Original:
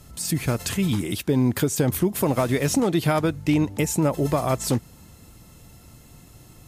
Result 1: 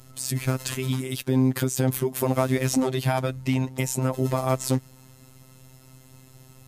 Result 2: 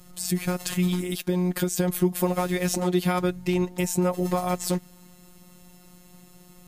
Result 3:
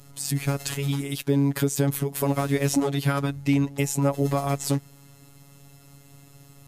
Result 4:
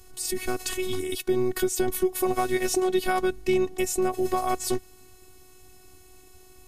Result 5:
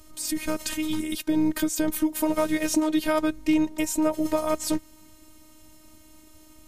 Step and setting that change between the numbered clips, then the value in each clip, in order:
robotiser, frequency: 130, 180, 140, 370, 310 Hz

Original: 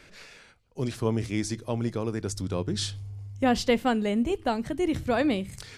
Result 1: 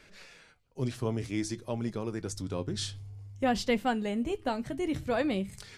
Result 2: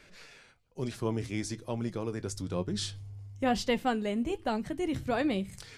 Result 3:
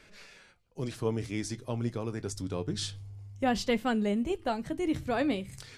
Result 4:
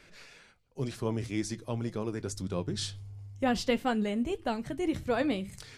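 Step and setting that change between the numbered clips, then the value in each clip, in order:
flange, rate: 0.54, 1.1, 0.26, 2 Hz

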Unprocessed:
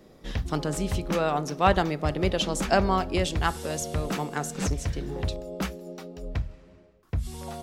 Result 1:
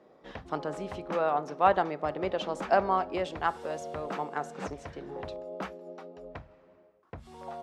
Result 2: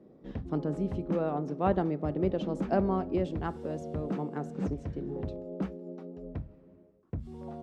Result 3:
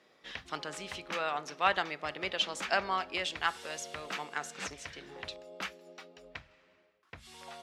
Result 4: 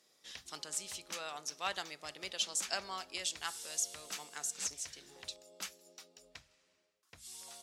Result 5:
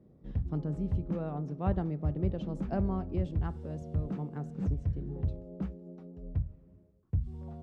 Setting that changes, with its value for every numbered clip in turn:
band-pass, frequency: 820, 270, 2300, 7200, 110 Hz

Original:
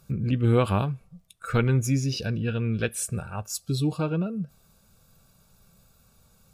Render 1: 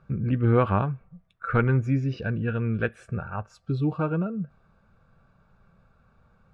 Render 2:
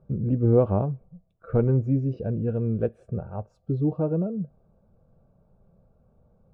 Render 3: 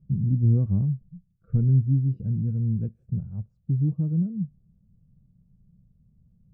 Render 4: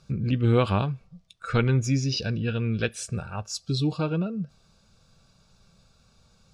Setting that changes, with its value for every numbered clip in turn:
synth low-pass, frequency: 1600, 600, 170, 5100 Hz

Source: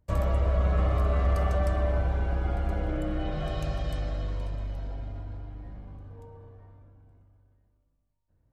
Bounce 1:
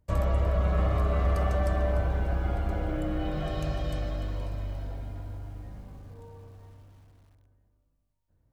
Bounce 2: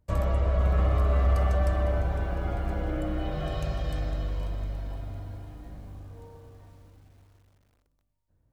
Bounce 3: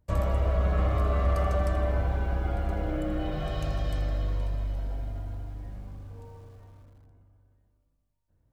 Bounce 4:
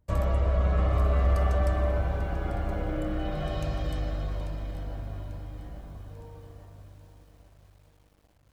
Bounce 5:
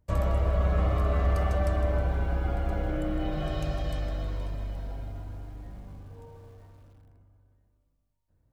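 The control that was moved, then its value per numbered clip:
lo-fi delay, time: 297, 505, 81, 842, 158 ms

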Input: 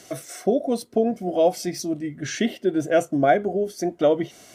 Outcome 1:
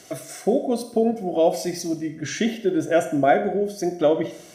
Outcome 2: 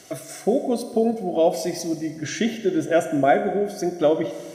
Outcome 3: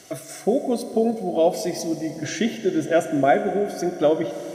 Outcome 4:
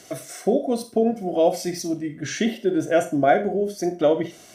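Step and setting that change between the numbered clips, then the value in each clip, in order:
Schroeder reverb, RT60: 0.67, 1.6, 3.6, 0.31 s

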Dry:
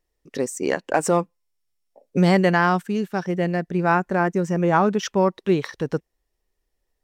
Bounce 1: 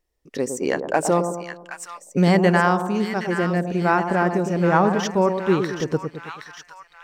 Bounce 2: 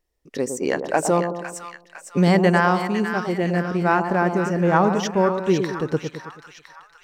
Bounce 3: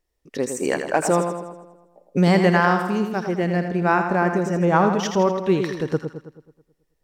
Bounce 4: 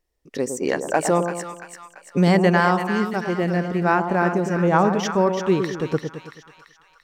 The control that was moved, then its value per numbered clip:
split-band echo, highs: 770, 505, 81, 339 ms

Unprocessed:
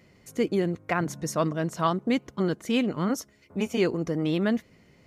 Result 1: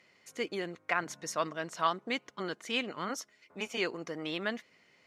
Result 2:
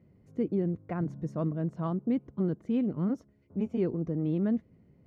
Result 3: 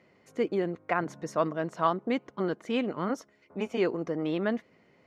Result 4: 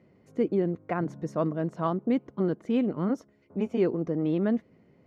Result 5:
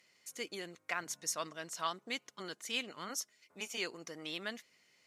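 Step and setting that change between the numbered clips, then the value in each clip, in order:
band-pass, frequency: 2600, 110, 840, 320, 6900 Hz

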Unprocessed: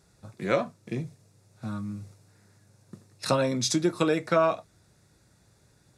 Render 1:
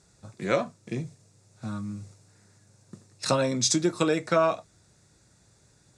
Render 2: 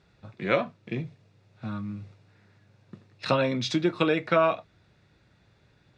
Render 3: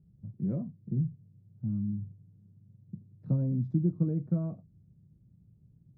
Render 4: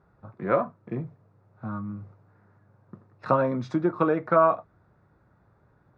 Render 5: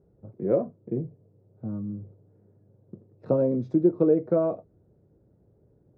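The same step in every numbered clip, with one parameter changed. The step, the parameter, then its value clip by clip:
synth low-pass, frequency: 7800, 3000, 170, 1200, 450 Hz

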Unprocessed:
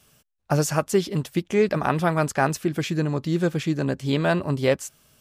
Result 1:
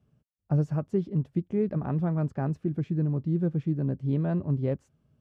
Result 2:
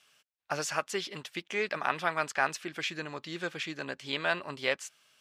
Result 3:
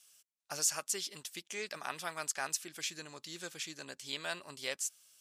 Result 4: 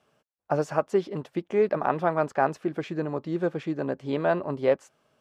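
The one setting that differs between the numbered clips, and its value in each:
band-pass, frequency: 120, 2500, 7600, 650 Hz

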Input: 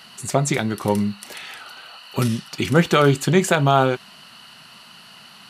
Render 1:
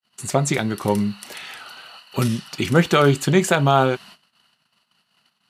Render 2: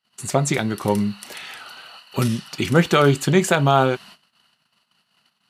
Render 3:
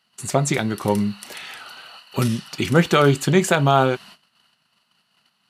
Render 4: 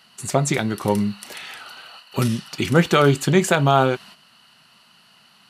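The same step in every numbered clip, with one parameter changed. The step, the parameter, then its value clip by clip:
gate, range: -52, -36, -23, -9 dB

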